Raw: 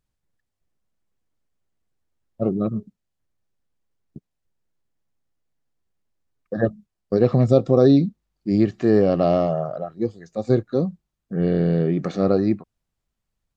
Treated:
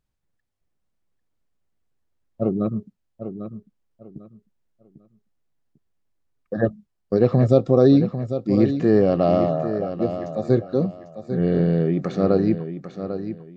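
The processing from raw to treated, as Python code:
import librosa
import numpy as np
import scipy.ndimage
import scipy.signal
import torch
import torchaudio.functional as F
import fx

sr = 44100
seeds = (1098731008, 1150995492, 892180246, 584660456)

p1 = fx.high_shelf(x, sr, hz=4800.0, db=-4.5)
y = p1 + fx.echo_feedback(p1, sr, ms=797, feedback_pct=25, wet_db=-10.0, dry=0)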